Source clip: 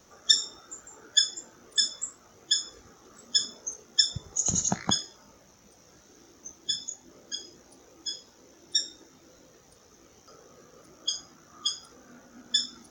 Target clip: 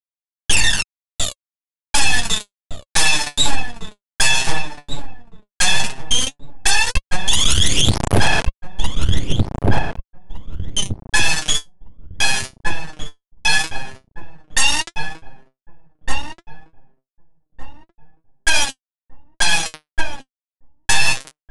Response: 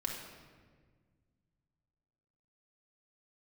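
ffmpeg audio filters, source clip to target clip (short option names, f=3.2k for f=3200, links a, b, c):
-filter_complex "[0:a]agate=range=-19dB:threshold=-44dB:ratio=16:detection=peak,asplit=2[a][b];[b]acompressor=threshold=-30dB:ratio=12,volume=-1.5dB[c];[a][c]amix=inputs=2:normalize=0,atempo=1.2,aeval=exprs='(mod(6.31*val(0)+1,2)-1)/6.31':c=same,acrusher=bits=3:dc=4:mix=0:aa=0.000001,aphaser=in_gain=1:out_gain=1:delay=3.8:decay=0.71:speed=0.24:type=sinusoidal,asplit=2[d][e];[e]adelay=755,lowpass=f=1.4k:p=1,volume=-4.5dB,asplit=2[f][g];[g]adelay=755,lowpass=f=1.4k:p=1,volume=0.29,asplit=2[h][i];[i]adelay=755,lowpass=f=1.4k:p=1,volume=0.29,asplit=2[j][k];[k]adelay=755,lowpass=f=1.4k:p=1,volume=0.29[l];[d][f][h][j][l]amix=inputs=5:normalize=0,asetrate=22050,aresample=44100,alimiter=level_in=17dB:limit=-1dB:release=50:level=0:latency=1,volume=-1dB"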